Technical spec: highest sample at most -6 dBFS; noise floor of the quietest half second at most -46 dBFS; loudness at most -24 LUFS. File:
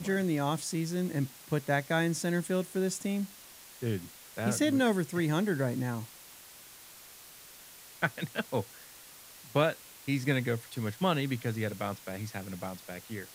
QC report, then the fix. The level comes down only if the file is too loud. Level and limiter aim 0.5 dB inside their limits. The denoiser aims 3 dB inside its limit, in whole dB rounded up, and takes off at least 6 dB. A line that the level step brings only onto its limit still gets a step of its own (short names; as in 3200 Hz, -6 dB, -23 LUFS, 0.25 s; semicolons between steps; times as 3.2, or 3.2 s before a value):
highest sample -11.0 dBFS: OK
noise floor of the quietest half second -52 dBFS: OK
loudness -32.0 LUFS: OK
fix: none